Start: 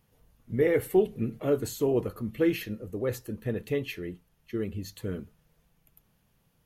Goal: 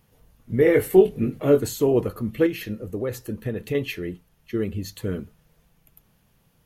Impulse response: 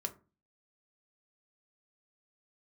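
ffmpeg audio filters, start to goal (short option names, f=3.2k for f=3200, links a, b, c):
-filter_complex "[0:a]asettb=1/sr,asplit=3[a][b][c];[a]atrim=end=0.644[d];[b]atrim=start=0.64:end=1.6,asetpts=PTS-STARTPTS,afade=t=in:d=0.004:c=qsin,afade=t=out:st=0.956:d=0.004:c=qsin,asplit=2[e][f];[f]adelay=21,volume=-5.5dB[g];[e][g]amix=inputs=2:normalize=0,atrim=end_sample=42336[h];[c]atrim=start=1.596[i];[d][h]acrossfade=d=0.004:c1=hsin:c2=qsin[j];[j][i]acrossfade=d=0.004:c1=qsin:c2=hsin,asettb=1/sr,asplit=3[k][l][m];[k]atrim=end=2.464[n];[l]atrim=start=2.46:end=3.75,asetpts=PTS-STARTPTS,afade=t=in:d=0.004:c=qsin,afade=t=out:st=1.286:d=0.004:c=qsin,acompressor=threshold=-30dB:ratio=4[o];[m]atrim=start=3.746[p];[n][o]acrossfade=d=0.004:c1=hsin:c2=qsin[q];[q][p]acrossfade=d=0.004:c1=qsin:c2=hsin,volume=6dB"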